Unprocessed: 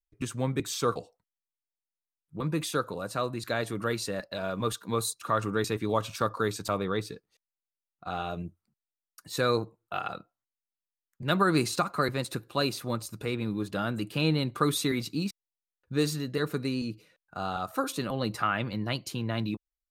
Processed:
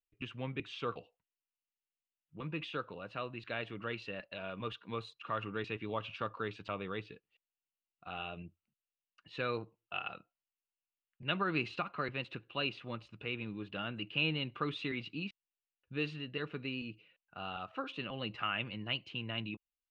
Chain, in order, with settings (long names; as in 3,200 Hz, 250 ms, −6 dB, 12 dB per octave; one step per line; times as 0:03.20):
transistor ladder low-pass 3,000 Hz, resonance 75%
level +1 dB